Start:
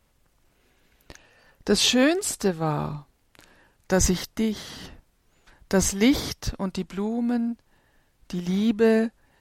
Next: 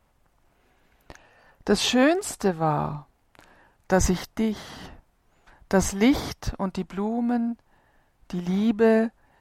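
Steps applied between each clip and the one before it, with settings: EQ curve 510 Hz 0 dB, 730 Hz +6 dB, 4100 Hz -5 dB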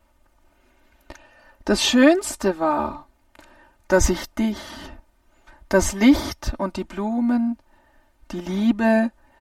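comb 3.3 ms, depth 94%; gain +1 dB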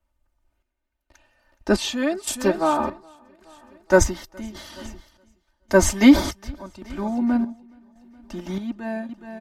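feedback echo 0.42 s, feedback 52%, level -15 dB; chopper 0.88 Hz, depth 65%, duty 55%; three-band expander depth 40%; gain -1 dB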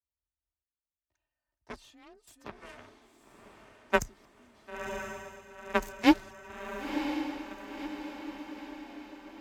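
added harmonics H 3 -9 dB, 4 -43 dB, 8 -45 dB, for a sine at -1.5 dBFS; diffused feedback echo 1.011 s, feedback 53%, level -7 dB; frequency shift +24 Hz; gain -4.5 dB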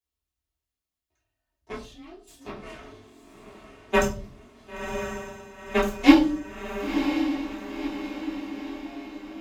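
reverb RT60 0.40 s, pre-delay 3 ms, DRR -8 dB; gain -3.5 dB

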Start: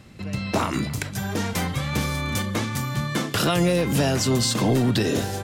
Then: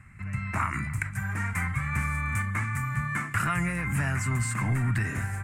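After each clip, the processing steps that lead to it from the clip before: EQ curve 110 Hz 0 dB, 490 Hz -24 dB, 1200 Hz 0 dB, 2200 Hz +3 dB, 3400 Hz -26 dB, 5600 Hz -21 dB, 8200 Hz -4 dB, 13000 Hz -14 dB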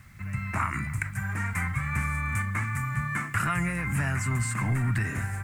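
requantised 10-bit, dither none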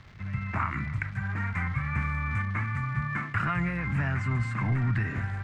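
crackle 480/s -37 dBFS; air absorption 220 m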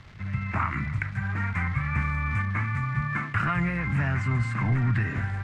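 gain +2.5 dB; Vorbis 48 kbps 32000 Hz

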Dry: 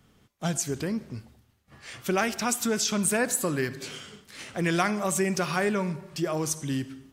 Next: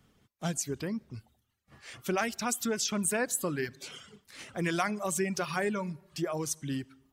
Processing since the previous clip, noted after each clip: reverb removal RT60 0.72 s; gain -4 dB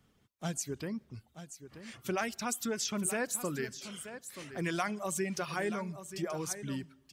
echo 0.931 s -12 dB; gain -3.5 dB

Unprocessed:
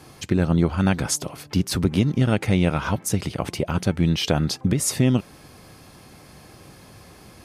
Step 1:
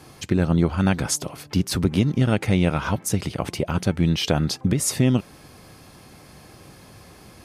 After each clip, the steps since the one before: nothing audible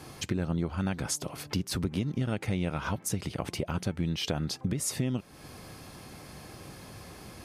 compressor 2.5:1, threshold -32 dBFS, peak gain reduction 12.5 dB

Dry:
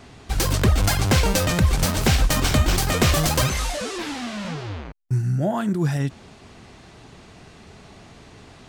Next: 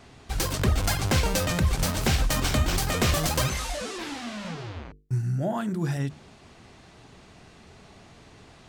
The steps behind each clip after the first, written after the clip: notches 50/100/150/200/250/300/350/400/450 Hz; gain -4.5 dB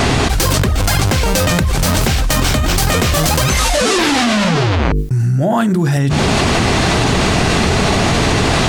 fast leveller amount 100%; gain +5 dB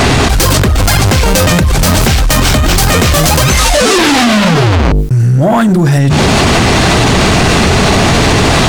sample leveller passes 2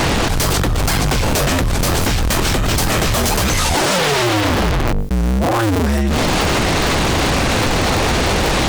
cycle switcher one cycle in 2, inverted; gain -7.5 dB

